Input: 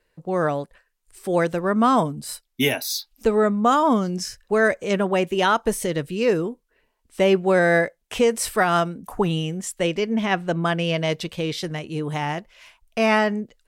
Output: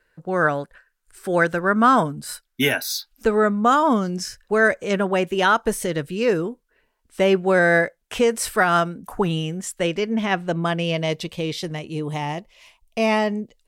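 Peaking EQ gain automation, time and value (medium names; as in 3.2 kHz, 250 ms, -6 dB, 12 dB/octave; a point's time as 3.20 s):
peaking EQ 1.5 kHz 0.43 oct
2.80 s +12 dB
3.86 s +4.5 dB
9.94 s +4.5 dB
10.98 s -5.5 dB
11.90 s -5.5 dB
12.30 s -13 dB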